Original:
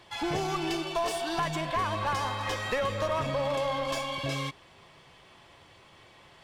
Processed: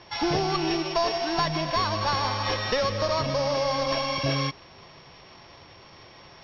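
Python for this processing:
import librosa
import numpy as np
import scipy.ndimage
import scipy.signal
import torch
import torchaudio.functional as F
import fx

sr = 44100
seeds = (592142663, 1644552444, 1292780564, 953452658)

y = np.r_[np.sort(x[:len(x) // 8 * 8].reshape(-1, 8), axis=1).ravel(), x[len(x) // 8 * 8:]]
y = scipy.signal.sosfilt(scipy.signal.butter(12, 5800.0, 'lowpass', fs=sr, output='sos'), y)
y = fx.rider(y, sr, range_db=10, speed_s=0.5)
y = y * librosa.db_to_amplitude(5.0)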